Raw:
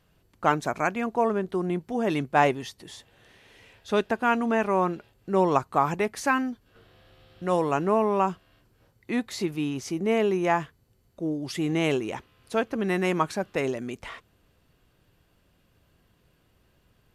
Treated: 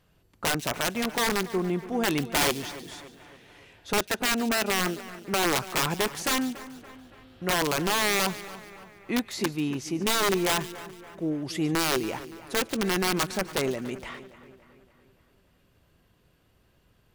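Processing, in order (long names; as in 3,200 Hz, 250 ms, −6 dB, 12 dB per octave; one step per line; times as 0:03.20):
0:03.91–0:05.43: notch comb filter 1,100 Hz
wrap-around overflow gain 18 dB
echo with a time of its own for lows and highs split 2,500 Hz, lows 284 ms, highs 144 ms, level −15.5 dB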